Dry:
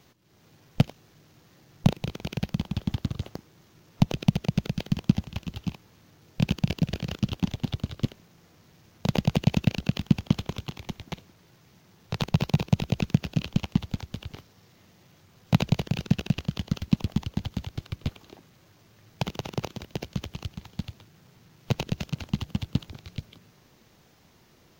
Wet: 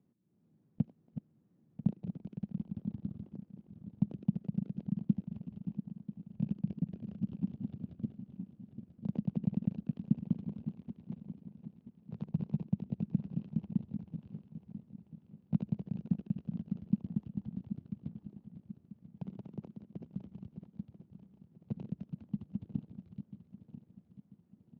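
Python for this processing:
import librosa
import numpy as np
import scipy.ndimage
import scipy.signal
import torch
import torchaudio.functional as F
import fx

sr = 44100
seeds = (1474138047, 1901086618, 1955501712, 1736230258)

y = fx.reverse_delay_fb(x, sr, ms=495, feedback_pct=62, wet_db=-10)
y = fx.bandpass_q(y, sr, hz=210.0, q=2.4)
y = y * 10.0 ** (-6.0 / 20.0)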